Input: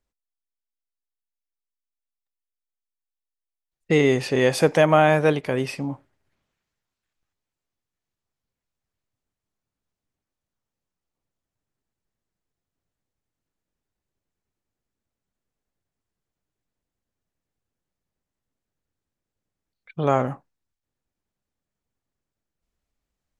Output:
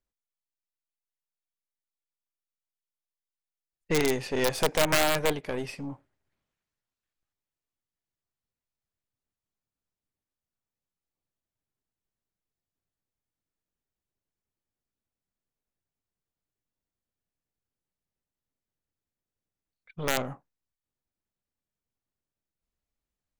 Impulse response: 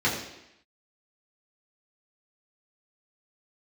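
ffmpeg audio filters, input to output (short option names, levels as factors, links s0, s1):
-af "aeval=exprs='0.631*(cos(1*acos(clip(val(0)/0.631,-1,1)))-cos(1*PI/2))+0.0126*(cos(6*acos(clip(val(0)/0.631,-1,1)))-cos(6*PI/2))+0.0708*(cos(8*acos(clip(val(0)/0.631,-1,1)))-cos(8*PI/2))':c=same,aeval=exprs='(mod(2.51*val(0)+1,2)-1)/2.51':c=same,volume=0.422"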